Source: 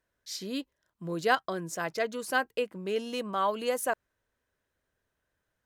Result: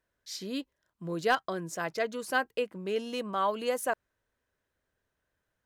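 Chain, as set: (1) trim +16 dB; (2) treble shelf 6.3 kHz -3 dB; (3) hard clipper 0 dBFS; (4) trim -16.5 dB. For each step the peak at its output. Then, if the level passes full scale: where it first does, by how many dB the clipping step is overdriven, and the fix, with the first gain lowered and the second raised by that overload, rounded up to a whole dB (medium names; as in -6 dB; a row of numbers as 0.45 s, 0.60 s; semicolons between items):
+4.5 dBFS, +4.5 dBFS, 0.0 dBFS, -16.5 dBFS; step 1, 4.5 dB; step 1 +11 dB, step 4 -11.5 dB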